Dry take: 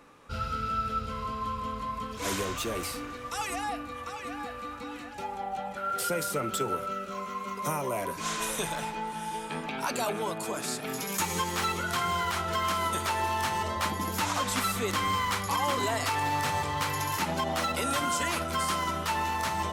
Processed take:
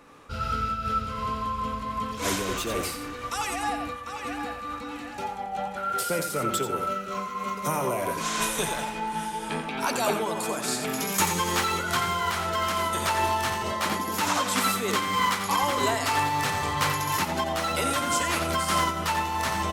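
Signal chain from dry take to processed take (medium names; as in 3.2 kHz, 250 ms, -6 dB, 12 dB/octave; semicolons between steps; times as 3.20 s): 13.63–15.63 s: high-pass 130 Hz 12 dB/octave; delay 88 ms -7 dB; random flutter of the level, depth 65%; trim +6.5 dB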